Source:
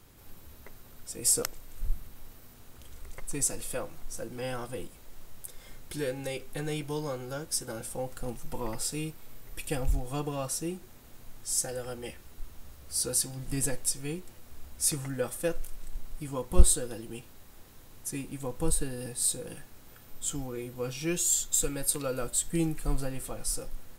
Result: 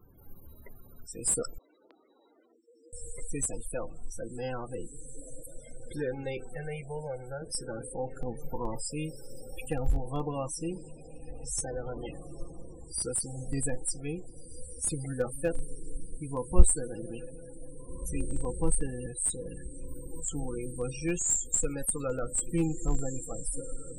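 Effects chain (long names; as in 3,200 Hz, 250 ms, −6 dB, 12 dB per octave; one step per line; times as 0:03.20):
0:06.55–0:07.42: phaser with its sweep stopped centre 1,100 Hz, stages 6
on a send: feedback delay with all-pass diffusion 1,762 ms, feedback 50%, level −11 dB
on the sum: spectral peaks only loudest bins 32
dynamic equaliser 910 Hz, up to +3 dB, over −56 dBFS, Q 5.7
in parallel at −11 dB: comparator with hysteresis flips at −22.5 dBFS
0:01.58–0:02.93: on the sum: Chebyshev band-pass filter 300–4,500 Hz, order 4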